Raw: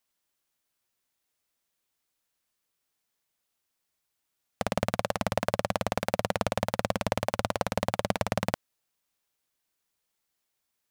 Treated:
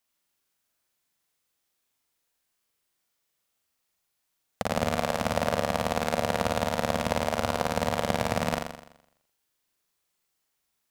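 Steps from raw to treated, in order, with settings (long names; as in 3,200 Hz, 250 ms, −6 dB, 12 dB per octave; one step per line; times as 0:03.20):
flutter between parallel walls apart 7.2 metres, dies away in 0.78 s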